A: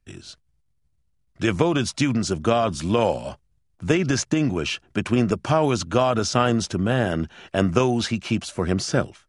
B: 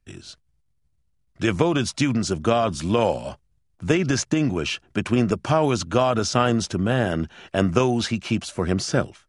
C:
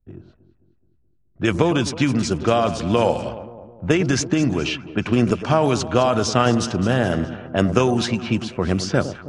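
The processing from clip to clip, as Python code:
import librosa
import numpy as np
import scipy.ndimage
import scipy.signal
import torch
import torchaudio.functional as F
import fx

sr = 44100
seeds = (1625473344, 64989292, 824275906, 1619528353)

y1 = x
y2 = fx.echo_alternate(y1, sr, ms=106, hz=1000.0, feedback_pct=73, wet_db=-11)
y2 = fx.env_lowpass(y2, sr, base_hz=590.0, full_db=-17.0)
y2 = F.gain(torch.from_numpy(y2), 2.0).numpy()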